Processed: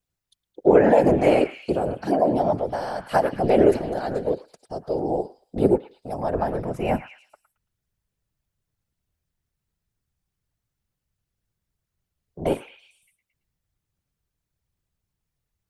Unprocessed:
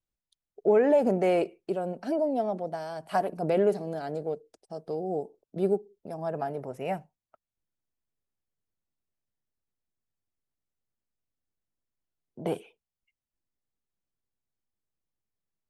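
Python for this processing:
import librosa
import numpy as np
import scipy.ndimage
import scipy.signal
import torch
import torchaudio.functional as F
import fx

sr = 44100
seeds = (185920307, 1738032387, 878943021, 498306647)

p1 = fx.low_shelf(x, sr, hz=200.0, db=8.5, at=(6.33, 6.96))
p2 = fx.whisperise(p1, sr, seeds[0])
p3 = p2 + fx.echo_stepped(p2, sr, ms=111, hz=1600.0, octaves=0.7, feedback_pct=70, wet_db=-6.5, dry=0)
y = p3 * 10.0 ** (7.0 / 20.0)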